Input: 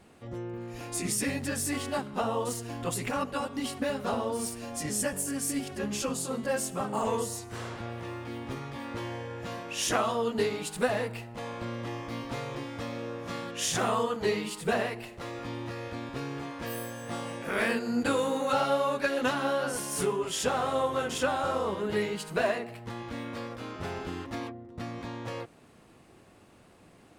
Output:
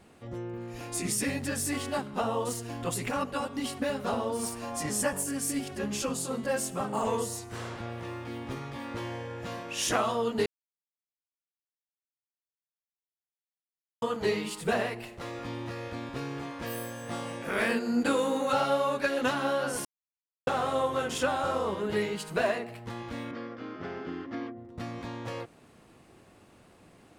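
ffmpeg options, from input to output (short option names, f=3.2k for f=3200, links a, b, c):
-filter_complex "[0:a]asettb=1/sr,asplit=3[a][b][c];[a]atrim=end=4.434[d];[b]atrim=start=4.43:end=5.24,asetpts=PTS-STARTPTS,afade=t=in:d=0.004:c=qsin,afade=t=out:st=0.806:d=0.004:c=qsin,equalizer=f=1k:w=1.4:g=8.5[e];[c]atrim=start=5.236[f];[d][e]acrossfade=d=0.004:c1=hsin:c2=qsin[g];[g][f]acrossfade=d=0.004:c1=qsin:c2=hsin,asettb=1/sr,asplit=3[h][i][j];[h]atrim=end=17.714[k];[i]atrim=start=17.71:end=18.46,asetpts=PTS-STARTPTS,afade=t=in:d=0.004:c=qsin,afade=t=out:st=0.746:d=0.004:c=qsin,lowshelf=f=150:t=q:w=1.5:g=-7[l];[j]atrim=start=18.456[m];[k][l]acrossfade=d=0.004:c1=hsin:c2=qsin[n];[n][m]acrossfade=d=0.004:c1=qsin:c2=hsin,asettb=1/sr,asplit=3[o][p][q];[o]atrim=end=23.314[r];[p]atrim=start=23.31:end=24.57,asetpts=PTS-STARTPTS,afade=t=in:d=0.004:c=qsin,afade=t=out:st=1.256:d=0.004:c=qsin,highpass=170,equalizer=f=290:t=q:w=4:g=4,equalizer=f=580:t=q:w=4:g=-4,equalizer=f=910:t=q:w=4:g=-8,equalizer=f=2.6k:t=q:w=4:g=-7,equalizer=f=3.9k:t=q:w=4:g=-10,lowpass=f=4.4k:w=0.5412,lowpass=f=4.4k:w=1.3066[s];[q]atrim=start=24.566[t];[r][s]acrossfade=d=0.004:c1=hsin:c2=qsin[u];[u][t]acrossfade=d=0.004:c1=qsin:c2=hsin,asplit=5[v][w][x][y][z];[v]atrim=end=10.46,asetpts=PTS-STARTPTS,afade=t=out:st=10.456:d=0.004:c=hsin[aa];[w]atrim=start=10.46:end=14.02,asetpts=PTS-STARTPTS,volume=0[ab];[x]atrim=start=14.02:end=19.85,asetpts=PTS-STARTPTS,afade=t=in:d=0.004:c=hsin,afade=t=out:st=5.826:d=0.004:c=hsin[ac];[y]atrim=start=19.85:end=20.47,asetpts=PTS-STARTPTS,volume=0[ad];[z]atrim=start=20.47,asetpts=PTS-STARTPTS,afade=t=in:d=0.004:c=hsin[ae];[aa][ab][ac][ad][ae]concat=n=5:v=0:a=1"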